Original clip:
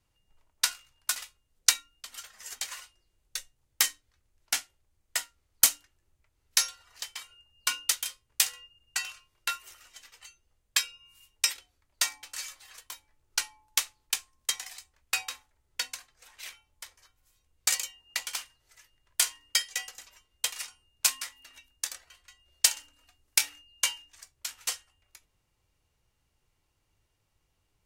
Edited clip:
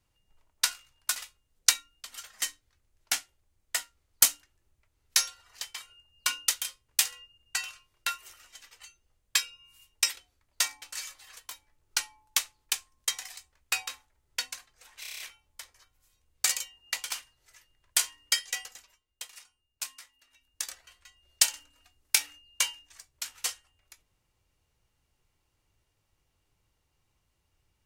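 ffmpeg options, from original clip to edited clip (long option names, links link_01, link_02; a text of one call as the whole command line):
ffmpeg -i in.wav -filter_complex "[0:a]asplit=10[link_01][link_02][link_03][link_04][link_05][link_06][link_07][link_08][link_09][link_10];[link_01]atrim=end=2.422[link_11];[link_02]atrim=start=3.828:end=16.452[link_12];[link_03]atrim=start=16.418:end=16.452[link_13];[link_04]atrim=start=16.418:end=16.452[link_14];[link_05]atrim=start=16.418:end=16.452[link_15];[link_06]atrim=start=16.418:end=16.452[link_16];[link_07]atrim=start=16.418:end=16.452[link_17];[link_08]atrim=start=16.418:end=20.23,asetpts=PTS-STARTPTS,afade=type=out:start_time=3.462:duration=0.35:silence=0.251189[link_18];[link_09]atrim=start=20.23:end=21.57,asetpts=PTS-STARTPTS,volume=-12dB[link_19];[link_10]atrim=start=21.57,asetpts=PTS-STARTPTS,afade=type=in:duration=0.35:silence=0.251189[link_20];[link_11][link_12]acrossfade=duration=0.004:curve1=hsin:curve2=hsin[link_21];[link_21][link_13]acrossfade=duration=0.004:curve1=hsin:curve2=hsin[link_22];[link_22][link_14]acrossfade=duration=0.004:curve1=hsin:curve2=hsin[link_23];[link_23][link_15]acrossfade=duration=0.004:curve1=hsin:curve2=hsin[link_24];[link_24][link_16]acrossfade=duration=0.004:curve1=hsin:curve2=hsin[link_25];[link_25][link_17]acrossfade=duration=0.004:curve1=hsin:curve2=hsin[link_26];[link_18][link_19][link_20]concat=n=3:v=0:a=1[link_27];[link_26][link_27]acrossfade=duration=0.004:curve1=hsin:curve2=hsin" out.wav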